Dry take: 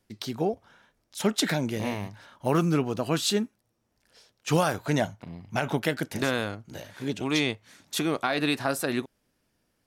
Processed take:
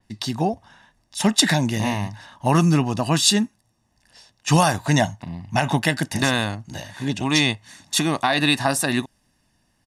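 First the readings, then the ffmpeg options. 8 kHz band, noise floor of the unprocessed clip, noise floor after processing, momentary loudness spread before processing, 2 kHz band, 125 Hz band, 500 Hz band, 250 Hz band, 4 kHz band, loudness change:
+11.0 dB, −75 dBFS, −67 dBFS, 13 LU, +7.5 dB, +9.0 dB, +2.0 dB, +6.5 dB, +9.5 dB, +7.0 dB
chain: -af "lowpass=frequency=11000:width=0.5412,lowpass=frequency=11000:width=1.3066,aecho=1:1:1.1:0.61,adynamicequalizer=threshold=0.0112:dfrequency=4400:dqfactor=0.7:tfrequency=4400:tqfactor=0.7:attack=5:release=100:ratio=0.375:range=2.5:mode=boostabove:tftype=highshelf,volume=6dB"

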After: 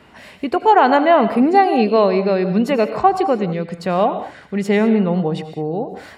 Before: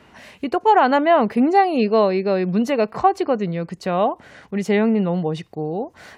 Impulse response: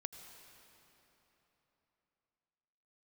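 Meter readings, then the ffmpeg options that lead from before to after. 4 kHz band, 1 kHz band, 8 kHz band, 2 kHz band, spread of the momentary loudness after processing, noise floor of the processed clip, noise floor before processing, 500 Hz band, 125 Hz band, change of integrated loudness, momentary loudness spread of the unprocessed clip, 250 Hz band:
+2.5 dB, +3.0 dB, can't be measured, +2.5 dB, 12 LU, −45 dBFS, −52 dBFS, +2.5 dB, +2.5 dB, +2.5 dB, 12 LU, +2.5 dB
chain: -filter_complex "[0:a]bandreject=frequency=6100:width=7.5[link_01];[1:a]atrim=start_sample=2205,afade=type=out:start_time=0.26:duration=0.01,atrim=end_sample=11907[link_02];[link_01][link_02]afir=irnorm=-1:irlink=0,volume=6dB"

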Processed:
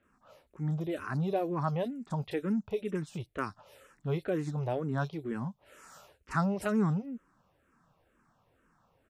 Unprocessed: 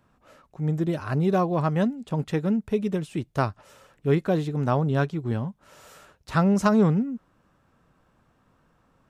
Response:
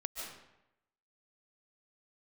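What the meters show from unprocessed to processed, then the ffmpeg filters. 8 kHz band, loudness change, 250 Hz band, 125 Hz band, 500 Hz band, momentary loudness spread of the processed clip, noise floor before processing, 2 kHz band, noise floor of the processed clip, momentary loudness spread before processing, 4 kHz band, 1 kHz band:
−8.0 dB, −8.5 dB, −9.0 dB, −8.5 dB, −8.0 dB, 10 LU, −66 dBFS, −6.5 dB, −72 dBFS, 10 LU, −8.5 dB, −8.0 dB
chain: -filter_complex "[0:a]lowshelf=frequency=290:gain=-5,acrossover=split=4000[link_01][link_02];[link_02]adelay=30[link_03];[link_01][link_03]amix=inputs=2:normalize=0,asplit=2[link_04][link_05];[link_05]alimiter=level_in=1.5dB:limit=-24dB:level=0:latency=1,volume=-1.5dB,volume=-1dB[link_06];[link_04][link_06]amix=inputs=2:normalize=0,asplit=2[link_07][link_08];[link_08]afreqshift=-2.1[link_09];[link_07][link_09]amix=inputs=2:normalize=1,volume=-6dB"

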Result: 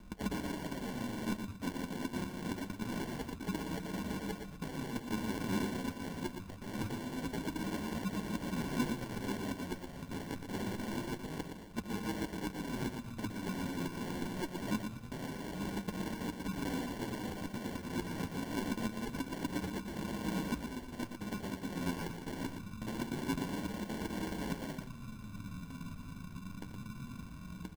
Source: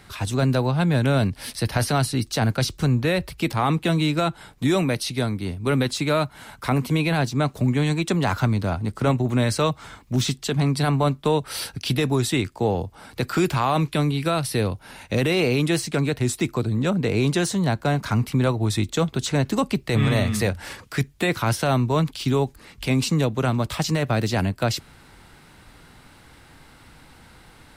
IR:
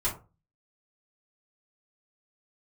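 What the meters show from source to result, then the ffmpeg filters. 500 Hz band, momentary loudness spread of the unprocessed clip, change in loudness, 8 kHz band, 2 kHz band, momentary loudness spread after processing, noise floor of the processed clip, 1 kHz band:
−19.0 dB, 6 LU, −17.0 dB, −16.5 dB, −15.5 dB, 8 LU, −49 dBFS, −16.5 dB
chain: -filter_complex "[0:a]aeval=exprs='val(0)+0.5*0.0266*sgn(val(0))':channel_layout=same,afwtdn=0.0316,asplit=2[link_01][link_02];[link_02]acompressor=threshold=-30dB:ratio=12,volume=3dB[link_03];[link_01][link_03]amix=inputs=2:normalize=0,afreqshift=42,aeval=exprs='(mod(11.2*val(0)+1,2)-1)/11.2':channel_layout=same,bandpass=frequency=420:width_type=q:width=4.1:csg=0,flanger=delay=7.7:depth=3.4:regen=39:speed=0.25:shape=sinusoidal,afreqshift=-190,acrusher=samples=35:mix=1:aa=0.000001,aecho=1:1:118|236|354:0.447|0.103|0.0236,volume=3.5dB"

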